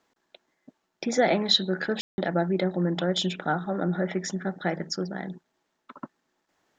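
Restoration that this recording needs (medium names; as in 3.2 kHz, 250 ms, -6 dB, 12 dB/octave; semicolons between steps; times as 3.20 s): room tone fill 2.01–2.18 s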